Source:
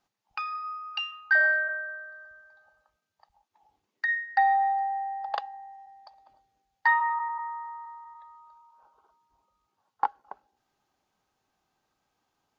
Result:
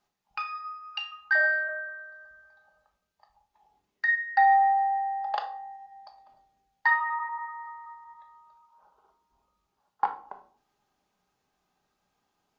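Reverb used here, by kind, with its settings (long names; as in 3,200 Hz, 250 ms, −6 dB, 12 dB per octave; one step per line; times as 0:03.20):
rectangular room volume 450 cubic metres, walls furnished, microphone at 1.3 metres
level −1 dB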